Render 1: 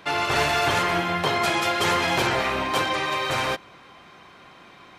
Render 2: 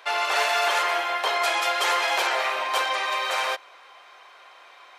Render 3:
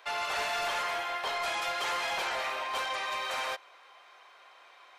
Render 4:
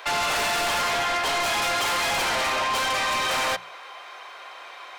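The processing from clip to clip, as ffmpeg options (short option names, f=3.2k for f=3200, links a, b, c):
-af "highpass=f=530:w=0.5412,highpass=f=530:w=1.3066"
-filter_complex "[0:a]acrossover=split=5100[a][b];[a]asoftclip=type=tanh:threshold=-20dB[c];[b]alimiter=level_in=8dB:limit=-24dB:level=0:latency=1,volume=-8dB[d];[c][d]amix=inputs=2:normalize=0,volume=-6.5dB"
-af "aeval=exprs='0.0596*(cos(1*acos(clip(val(0)/0.0596,-1,1)))-cos(1*PI/2))+0.0211*(cos(5*acos(clip(val(0)/0.0596,-1,1)))-cos(5*PI/2))':c=same,bandreject=f=60:t=h:w=6,bandreject=f=120:t=h:w=6,bandreject=f=180:t=h:w=6,volume=5.5dB"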